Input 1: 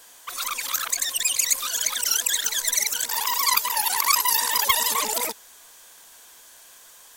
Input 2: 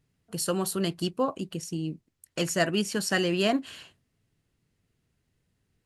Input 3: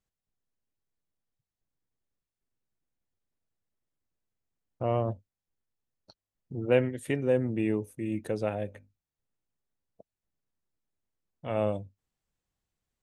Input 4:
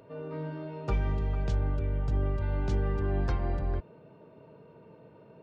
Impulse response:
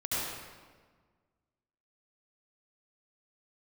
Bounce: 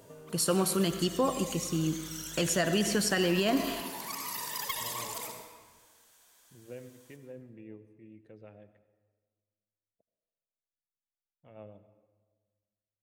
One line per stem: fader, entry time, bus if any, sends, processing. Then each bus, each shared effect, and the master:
-17.0 dB, 0.00 s, send -9 dB, auto duck -14 dB, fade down 0.20 s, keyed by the second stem
+1.0 dB, 0.00 s, send -17.5 dB, dry
-19.5 dB, 0.00 s, send -19.5 dB, LPF 4000 Hz; rotary speaker horn 6.7 Hz
-8.5 dB, 0.00 s, no send, hard clip -35.5 dBFS, distortion -6 dB; negative-ratio compressor -44 dBFS, ratio -1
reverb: on, RT60 1.5 s, pre-delay 65 ms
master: limiter -17.5 dBFS, peak gain reduction 8 dB

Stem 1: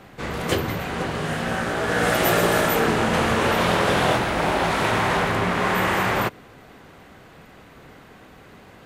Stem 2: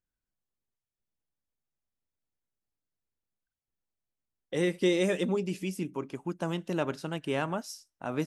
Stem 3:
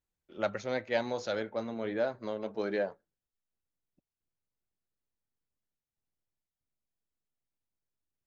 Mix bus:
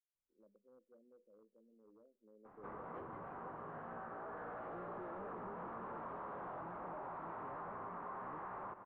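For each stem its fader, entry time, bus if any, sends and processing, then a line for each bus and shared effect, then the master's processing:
-7.5 dB, 2.45 s, no send, echo send -15.5 dB, bell 72 Hz -9.5 dB 2.4 oct
-3.5 dB, 0.15 s, no send, no echo send, dry
2.13 s -20 dB -> 2.68 s -9.5 dB, 0.00 s, no send, no echo send, elliptic band-pass 200–500 Hz, stop band 40 dB; overloaded stage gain 31.5 dB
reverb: off
echo: feedback echo 0.15 s, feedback 55%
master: hard clip -28 dBFS, distortion -9 dB; ladder low-pass 1300 Hz, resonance 50%; compressor 3:1, threshold -47 dBFS, peak gain reduction 9.5 dB

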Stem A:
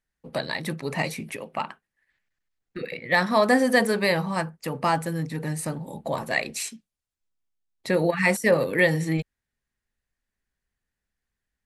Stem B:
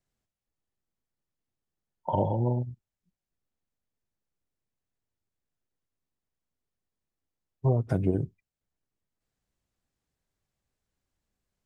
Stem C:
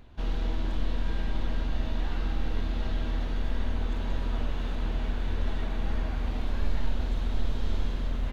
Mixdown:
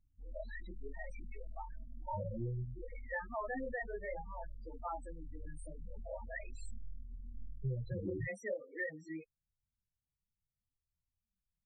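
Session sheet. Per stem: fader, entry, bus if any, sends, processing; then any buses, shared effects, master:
-11.0 dB, 0.00 s, no send, reverb removal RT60 0.82 s; HPF 290 Hz 12 dB/oct
-3.0 dB, 0.00 s, no send, loudest bins only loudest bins 8
-19.5 dB, 0.00 s, no send, dry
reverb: off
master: chorus voices 2, 0.41 Hz, delay 24 ms, depth 2.6 ms; loudest bins only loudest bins 8; compressor 4:1, threshold -36 dBFS, peak gain reduction 10 dB

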